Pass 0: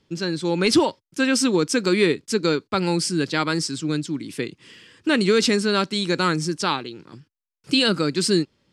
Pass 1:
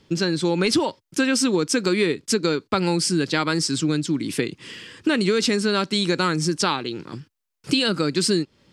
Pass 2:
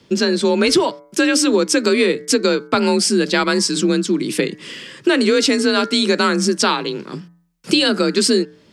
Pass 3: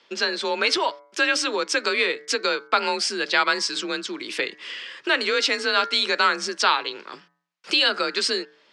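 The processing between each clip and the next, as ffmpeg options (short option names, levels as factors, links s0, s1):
-af "acompressor=threshold=0.0447:ratio=4,volume=2.51"
-af "bandreject=f=135.8:t=h:w=4,bandreject=f=271.6:t=h:w=4,bandreject=f=407.4:t=h:w=4,bandreject=f=543.2:t=h:w=4,bandreject=f=679:t=h:w=4,bandreject=f=814.8:t=h:w=4,bandreject=f=950.6:t=h:w=4,bandreject=f=1086.4:t=h:w=4,bandreject=f=1222.2:t=h:w=4,bandreject=f=1358:t=h:w=4,bandreject=f=1493.8:t=h:w=4,bandreject=f=1629.6:t=h:w=4,bandreject=f=1765.4:t=h:w=4,bandreject=f=1901.2:t=h:w=4,bandreject=f=2037:t=h:w=4,bandreject=f=2172.8:t=h:w=4,afreqshift=36,volume=1.88"
-af "highpass=780,lowpass=4300"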